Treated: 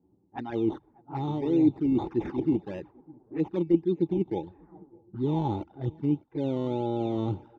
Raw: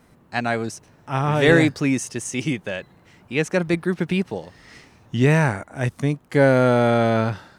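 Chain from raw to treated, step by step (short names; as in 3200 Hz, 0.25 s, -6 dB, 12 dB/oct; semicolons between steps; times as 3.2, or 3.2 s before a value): reverse; compressor 8:1, threshold -25 dBFS, peak gain reduction 15 dB; reverse; spectral noise reduction 9 dB; on a send: feedback echo 0.603 s, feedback 47%, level -24 dB; on the sum: decimation with a swept rate 14×, swing 60% 1.7 Hz; HPF 47 Hz; low shelf 91 Hz +8.5 dB; envelope flanger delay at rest 11.2 ms, full sweep at -25 dBFS; low-pass opened by the level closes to 480 Hz, open at -27 dBFS; tape spacing loss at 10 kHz 31 dB; small resonant body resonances 330/830/3600 Hz, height 17 dB, ringing for 35 ms; gain -5.5 dB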